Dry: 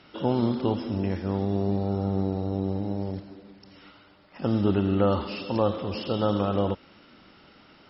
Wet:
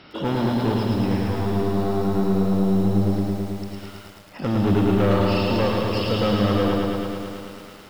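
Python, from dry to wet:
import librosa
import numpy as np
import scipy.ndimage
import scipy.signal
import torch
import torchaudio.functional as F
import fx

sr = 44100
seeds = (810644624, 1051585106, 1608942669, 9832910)

p1 = 10.0 ** (-25.0 / 20.0) * np.tanh(x / 10.0 ** (-25.0 / 20.0))
p2 = p1 + fx.echo_feedback(p1, sr, ms=99, feedback_pct=44, wet_db=-11.5, dry=0)
p3 = fx.echo_crushed(p2, sr, ms=109, feedback_pct=80, bits=9, wet_db=-3.5)
y = p3 * librosa.db_to_amplitude(6.5)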